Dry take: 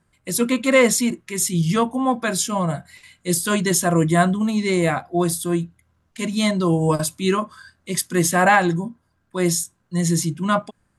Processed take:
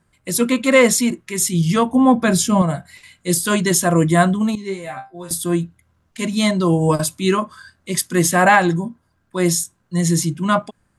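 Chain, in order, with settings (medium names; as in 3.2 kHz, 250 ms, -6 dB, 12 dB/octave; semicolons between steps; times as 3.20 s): 1.92–2.62 s: bass shelf 310 Hz +11.5 dB; 4.55–5.31 s: chord resonator C3 fifth, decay 0.23 s; trim +2.5 dB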